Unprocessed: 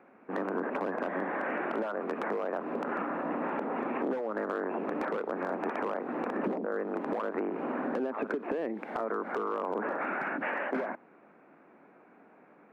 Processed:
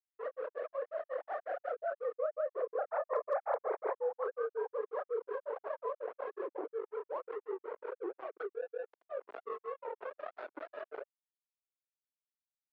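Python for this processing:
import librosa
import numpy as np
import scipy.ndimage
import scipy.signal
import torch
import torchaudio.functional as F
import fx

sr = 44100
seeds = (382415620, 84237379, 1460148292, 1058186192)

y = fx.sine_speech(x, sr)
y = fx.doppler_pass(y, sr, speed_mps=16, closest_m=5.2, pass_at_s=3.31)
y = fx.doubler(y, sr, ms=31.0, db=-7)
y = y + 10.0 ** (-21.5 / 20.0) * np.pad(y, (int(757 * sr / 1000.0), 0))[:len(y)]
y = np.sign(y) * np.maximum(np.abs(y) - 10.0 ** (-59.0 / 20.0), 0.0)
y = scipy.signal.sosfilt(scipy.signal.butter(4, 390.0, 'highpass', fs=sr, output='sos'), y)
y = fx.granulator(y, sr, seeds[0], grain_ms=132.0, per_s=5.5, spray_ms=100.0, spread_st=0)
y = scipy.signal.sosfilt(scipy.signal.butter(2, 1000.0, 'lowpass', fs=sr, output='sos'), y)
y = np.clip(10.0 ** (30.5 / 20.0) * y, -1.0, 1.0) / 10.0 ** (30.5 / 20.0)
y = fx.env_flatten(y, sr, amount_pct=70)
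y = F.gain(torch.from_numpy(y), 6.5).numpy()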